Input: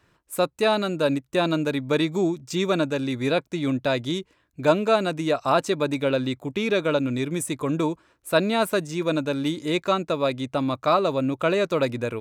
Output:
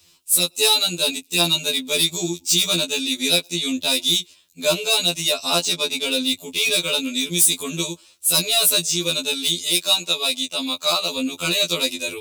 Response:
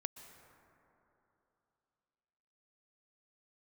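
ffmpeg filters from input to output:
-filter_complex "[0:a]asettb=1/sr,asplit=3[link_01][link_02][link_03];[link_01]atrim=end=9.624[link_04];[link_02]atrim=start=9.62:end=11.18,asetpts=PTS-STARTPTS,afade=type=in:duration=0.004:curve=qsin,afade=type=out:start_time=1.556:duration=0.004:curve=qsin,highpass=frequency=310:poles=1[link_05];[link_03]atrim=start=11.176[link_06];[link_04][link_05]acrossfade=duration=0.004:curve1=hsin:curve2=qsin[link_07];[link_07][link_06]acrossfade=duration=0.004:curve1=qsin:curve2=hsin,acrossover=split=2100[link_08][link_09];[link_09]aeval=exprs='0.0398*(abs(mod(val(0)/0.0398+3,4)-2)-1)':channel_layout=same[link_10];[link_08][link_10]amix=inputs=2:normalize=0,asettb=1/sr,asplit=3[link_11][link_12][link_13];[link_11]atrim=end=5.544[link_14];[link_12]atrim=start=5.54:end=6.05,asetpts=PTS-STARTPTS,afade=type=in:duration=0.004:curve=qsin,afade=type=out:start_time=0.506:duration=0.004:curve=qsin,adynamicsmooth=sensitivity=6:basefreq=3300[link_15];[link_13]atrim=start=6.046[link_16];[link_14][link_15]acrossfade=duration=0.004:curve1=hsin:curve2=qsin[link_17];[link_17][link_16]acrossfade=duration=0.004:curve1=qsin:curve2=hsin,aexciter=amount=12.3:drive=5.4:freq=2600,asplit=2[link_18][link_19];[link_19]asoftclip=type=tanh:threshold=-11.5dB,volume=-9dB[link_20];[link_18][link_20]amix=inputs=2:normalize=0[link_21];[1:a]atrim=start_sample=2205,afade=type=out:start_time=0.16:duration=0.01,atrim=end_sample=7497[link_22];[link_21][link_22]afir=irnorm=-1:irlink=0,afftfilt=real='re*2*eq(mod(b,4),0)':imag='im*2*eq(mod(b,4),0)':win_size=2048:overlap=0.75,volume=-1dB"

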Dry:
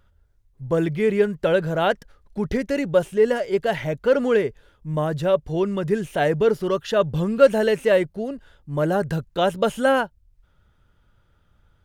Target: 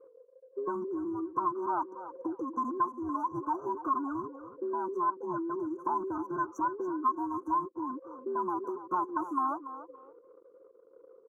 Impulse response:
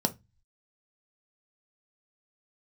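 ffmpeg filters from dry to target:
-af "afftfilt=real='real(if(between(b,1,1008),(2*floor((b-1)/24)+1)*24-b,b),0)':imag='imag(if(between(b,1,1008),(2*floor((b-1)/24)+1)*24-b,b),0)*if(between(b,1,1008),-1,1)':win_size=2048:overlap=0.75,highpass=frequency=300:width_type=q:width=3.6,afftfilt=real='re*(1-between(b*sr/4096,1500,5500))':imag='im*(1-between(b*sr/4096,1500,5500))':win_size=4096:overlap=0.75,acompressor=threshold=-32dB:ratio=10,equalizer=frequency=1000:width_type=o:width=1:gain=9,equalizer=frequency=4000:width_type=o:width=1:gain=10,equalizer=frequency=8000:width_type=o:width=1:gain=-11,asetrate=46305,aresample=44100,aecho=1:1:286|572|858:0.224|0.0537|0.0129,anlmdn=0.00398,volume=-2.5dB"

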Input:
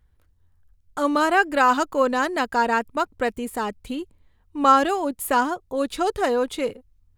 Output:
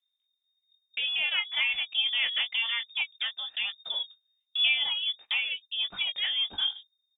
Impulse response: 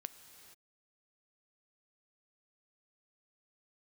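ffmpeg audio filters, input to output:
-filter_complex "[0:a]acompressor=threshold=-34dB:ratio=2,asplit=2[link_01][link_02];[link_02]adelay=18,volume=-7.5dB[link_03];[link_01][link_03]amix=inputs=2:normalize=0,aphaser=in_gain=1:out_gain=1:delay=1.1:decay=0.34:speed=0.44:type=triangular,lowpass=frequency=3100:width_type=q:width=0.5098,lowpass=frequency=3100:width_type=q:width=0.6013,lowpass=frequency=3100:width_type=q:width=0.9,lowpass=frequency=3100:width_type=q:width=2.563,afreqshift=-3700,agate=range=-25dB:threshold=-44dB:ratio=16:detection=peak"

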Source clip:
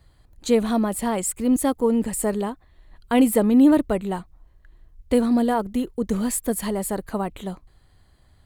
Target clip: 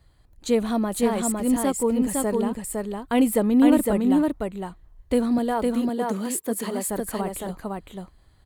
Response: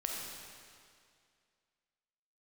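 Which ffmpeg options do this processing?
-filter_complex "[0:a]asettb=1/sr,asplit=3[link_01][link_02][link_03];[link_01]atrim=end=5.384[link_04];[link_02]atrim=start=5.38:end=6.89,asetpts=PTS-STARTPTS,afade=type=in:duration=0.004:curve=qsin,afade=type=out:start_time=1.506:duration=0.004:curve=qsin,highpass=220[link_05];[link_03]atrim=start=6.886[link_06];[link_04][link_05]acrossfade=duration=0.004:curve1=hsin:curve2=qsin[link_07];[link_07][link_06]acrossfade=duration=0.004:curve1=qsin:curve2=hsin,aecho=1:1:508:0.708,volume=-2.5dB"

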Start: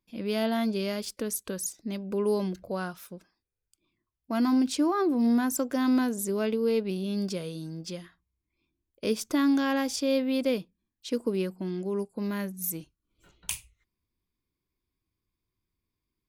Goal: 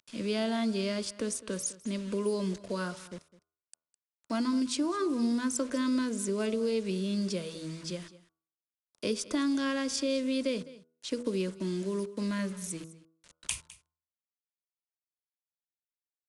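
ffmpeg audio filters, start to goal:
ffmpeg -i in.wav -filter_complex "[0:a]acrossover=split=210|3500[link_01][link_02][link_03];[link_03]acompressor=mode=upward:threshold=-43dB:ratio=2.5[link_04];[link_01][link_02][link_04]amix=inputs=3:normalize=0,acrusher=bits=7:mix=0:aa=0.000001,acrossover=split=130|3000[link_05][link_06][link_07];[link_06]acompressor=threshold=-27dB:ratio=6[link_08];[link_05][link_08][link_07]amix=inputs=3:normalize=0,bandreject=frequency=81.08:width_type=h:width=4,bandreject=frequency=162.16:width_type=h:width=4,bandreject=frequency=243.24:width_type=h:width=4,bandreject=frequency=324.32:width_type=h:width=4,bandreject=frequency=405.4:width_type=h:width=4,bandreject=frequency=486.48:width_type=h:width=4,bandreject=frequency=567.56:width_type=h:width=4,bandreject=frequency=648.64:width_type=h:width=4,bandreject=frequency=729.72:width_type=h:width=4,bandreject=frequency=810.8:width_type=h:width=4,bandreject=frequency=891.88:width_type=h:width=4,bandreject=frequency=972.96:width_type=h:width=4,bandreject=frequency=1054.04:width_type=h:width=4,bandreject=frequency=1135.12:width_type=h:width=4,bandreject=frequency=1216.2:width_type=h:width=4,bandreject=frequency=1297.28:width_type=h:width=4,bandreject=frequency=1378.36:width_type=h:width=4,bandreject=frequency=1459.44:width_type=h:width=4,asplit=2[link_09][link_10];[link_10]aecho=0:1:207:0.119[link_11];[link_09][link_11]amix=inputs=2:normalize=0,aresample=22050,aresample=44100,asuperstop=centerf=770:order=4:qfactor=5.6" out.wav

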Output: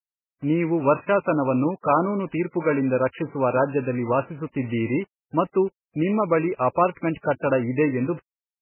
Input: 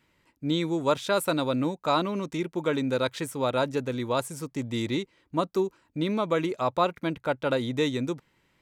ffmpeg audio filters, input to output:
ffmpeg -i in.wav -af "adynamicequalizer=threshold=0.00355:dfrequency=1500:dqfactor=5.5:tfrequency=1500:tqfactor=5.5:attack=5:release=100:ratio=0.375:range=3.5:mode=cutabove:tftype=bell,aeval=exprs='val(0)*gte(abs(val(0)),0.00531)':channel_layout=same,volume=5.5dB" -ar 8000 -c:a libmp3lame -b:a 8k out.mp3

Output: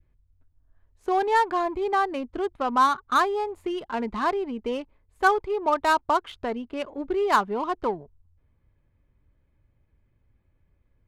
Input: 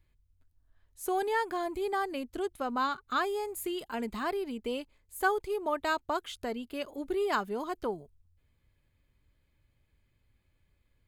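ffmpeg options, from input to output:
ffmpeg -i in.wav -af "adynamicequalizer=threshold=0.00562:dfrequency=1000:dqfactor=2.1:tfrequency=1000:tqfactor=2.1:attack=5:release=100:ratio=0.375:range=3.5:mode=boostabove:tftype=bell,adynamicsmooth=sensitivity=6.5:basefreq=1700,volume=5.5dB" out.wav

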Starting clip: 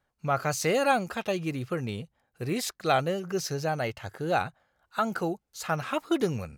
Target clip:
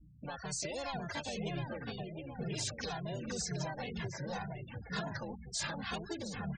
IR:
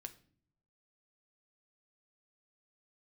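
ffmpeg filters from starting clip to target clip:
-filter_complex "[0:a]asubboost=boost=8.5:cutoff=100,acompressor=threshold=-37dB:ratio=5,aeval=exprs='val(0)+0.000891*(sin(2*PI*60*n/s)+sin(2*PI*2*60*n/s)/2+sin(2*PI*3*60*n/s)/3+sin(2*PI*4*60*n/s)/4+sin(2*PI*5*60*n/s)/5)':channel_layout=same,aresample=16000,asoftclip=type=tanh:threshold=-35.5dB,aresample=44100,acrossover=split=120|3400[link_01][link_02][link_03];[link_01]acompressor=threshold=-53dB:ratio=4[link_04];[link_02]acompressor=threshold=-52dB:ratio=4[link_05];[link_03]acompressor=threshold=-50dB:ratio=4[link_06];[link_04][link_05][link_06]amix=inputs=3:normalize=0,asplit=2[link_07][link_08];[link_08]adelay=714,lowpass=frequency=3400:poles=1,volume=-4.5dB,asplit=2[link_09][link_10];[link_10]adelay=714,lowpass=frequency=3400:poles=1,volume=0.51,asplit=2[link_11][link_12];[link_12]adelay=714,lowpass=frequency=3400:poles=1,volume=0.51,asplit=2[link_13][link_14];[link_14]adelay=714,lowpass=frequency=3400:poles=1,volume=0.51,asplit=2[link_15][link_16];[link_16]adelay=714,lowpass=frequency=3400:poles=1,volume=0.51,asplit=2[link_17][link_18];[link_18]adelay=714,lowpass=frequency=3400:poles=1,volume=0.51,asplit=2[link_19][link_20];[link_20]adelay=714,lowpass=frequency=3400:poles=1,volume=0.51[link_21];[link_09][link_11][link_13][link_15][link_17][link_19][link_21]amix=inputs=7:normalize=0[link_22];[link_07][link_22]amix=inputs=2:normalize=0,asplit=2[link_23][link_24];[link_24]asetrate=55563,aresample=44100,atempo=0.793701,volume=-2dB[link_25];[link_23][link_25]amix=inputs=2:normalize=0,lowshelf=frequency=160:gain=-8.5,bandreject=frequency=1300:width=9.6,afftfilt=real='re*gte(hypot(re,im),0.00224)':imag='im*gte(hypot(re,im),0.00224)':win_size=1024:overlap=0.75,asplit=2[link_26][link_27];[link_27]adelay=2.4,afreqshift=-2[link_28];[link_26][link_28]amix=inputs=2:normalize=1,volume=13dB"

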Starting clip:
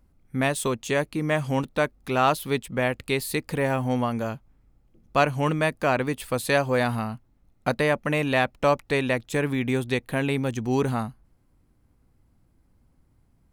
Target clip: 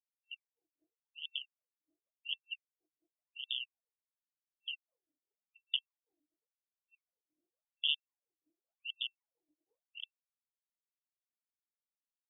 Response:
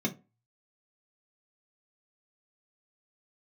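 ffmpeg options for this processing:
-filter_complex "[0:a]asplit=2[link_01][link_02];[link_02]aecho=0:1:118|236|354|472:0.251|0.105|0.0443|0.0186[link_03];[link_01][link_03]amix=inputs=2:normalize=0,acompressor=threshold=-26dB:ratio=16,aresample=16000,acrusher=bits=3:mix=0:aa=0.000001,aresample=44100,afftfilt=real='re*(1-between(b*sr/4096,150,2700))':imag='im*(1-between(b*sr/4096,150,2700))':win_size=4096:overlap=0.75,acrossover=split=880[link_04][link_05];[link_04]aeval=exprs='val(0)*(1-0.5/2+0.5/2*cos(2*PI*2.9*n/s))':channel_layout=same[link_06];[link_05]aeval=exprs='val(0)*(1-0.5/2-0.5/2*cos(2*PI*2.9*n/s))':channel_layout=same[link_07];[link_06][link_07]amix=inputs=2:normalize=0,atempo=1.1,afftfilt=real='re*between(b*sr/1024,410*pow(2600/410,0.5+0.5*sin(2*PI*0.91*pts/sr))/1.41,410*pow(2600/410,0.5+0.5*sin(2*PI*0.91*pts/sr))*1.41)':imag='im*between(b*sr/1024,410*pow(2600/410,0.5+0.5*sin(2*PI*0.91*pts/sr))/1.41,410*pow(2600/410,0.5+0.5*sin(2*PI*0.91*pts/sr))*1.41)':win_size=1024:overlap=0.75,volume=9.5dB"

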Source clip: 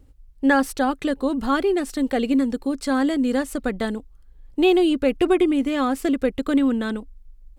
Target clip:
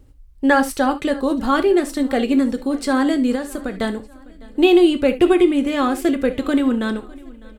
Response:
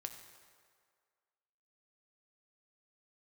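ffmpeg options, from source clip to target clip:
-filter_complex "[1:a]atrim=start_sample=2205,atrim=end_sample=3528[link_01];[0:a][link_01]afir=irnorm=-1:irlink=0,asettb=1/sr,asplit=3[link_02][link_03][link_04];[link_02]atrim=end=3.354[link_05];[link_03]atrim=start=3.35:end=3.78,asetpts=PTS-STARTPTS,afade=type=in:duration=0.004:curve=qsin,afade=type=out:start_time=0.426:duration=0.004:curve=qsin,acompressor=threshold=-32dB:ratio=2.5[link_06];[link_04]atrim=start=3.776[link_07];[link_05][link_06]acrossfade=duration=0.004:curve1=hsin:curve2=qsin[link_08];[link_08][link_07]acrossfade=duration=0.004:curve1=qsin:curve2=hsin,aecho=1:1:604|1208|1812:0.0708|0.0347|0.017,volume=7.5dB"

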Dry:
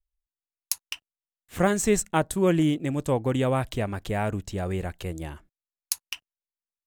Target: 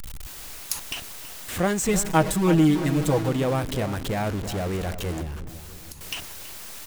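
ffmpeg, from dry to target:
ffmpeg -i in.wav -filter_complex "[0:a]aeval=exprs='val(0)+0.5*0.0562*sgn(val(0))':channel_layout=same,asettb=1/sr,asplit=3[link_01][link_02][link_03];[link_01]atrim=end=1.884[link_04];[link_02]atrim=start=1.88:end=3.29,asetpts=PTS-STARTPTS,afade=type=in:duration=0.004:curve=qsin,afade=type=out:start_time=1.406:duration=0.004:curve=qsin,aecho=1:1:6.3:0.93,atrim=end_sample=62181[link_05];[link_03]atrim=start=3.286[link_06];[link_04][link_05]acrossfade=duration=0.004:curve1=hsin:curve2=qsin[link_07];[link_07][link_06]acrossfade=duration=0.004:curve1=qsin:curve2=hsin,asplit=2[link_08][link_09];[link_09]adelay=328,lowpass=frequency=1600:poles=1,volume=-11dB,asplit=2[link_10][link_11];[link_11]adelay=328,lowpass=frequency=1600:poles=1,volume=0.5,asplit=2[link_12][link_13];[link_13]adelay=328,lowpass=frequency=1600:poles=1,volume=0.5,asplit=2[link_14][link_15];[link_15]adelay=328,lowpass=frequency=1600:poles=1,volume=0.5,asplit=2[link_16][link_17];[link_17]adelay=328,lowpass=frequency=1600:poles=1,volume=0.5[link_18];[link_08][link_10][link_12][link_14][link_16][link_18]amix=inputs=6:normalize=0,asettb=1/sr,asplit=3[link_19][link_20][link_21];[link_19]atrim=end=5.214[link_22];[link_20]atrim=start=5.21:end=6.01,asetpts=PTS-STARTPTS,afade=type=in:duration=0.004:curve=qsin,afade=type=out:start_time=0.796:duration=0.004:curve=qsin,acrossover=split=280[link_23][link_24];[link_24]acompressor=threshold=-38dB:ratio=8[link_25];[link_23][link_25]amix=inputs=2:normalize=0[link_26];[link_21]atrim=start=6.006[link_27];[link_22][link_26]acrossfade=duration=0.004:curve1=hsin:curve2=qsin[link_28];[link_28][link_27]acrossfade=duration=0.004:curve1=qsin:curve2=hsin,volume=-3dB" out.wav

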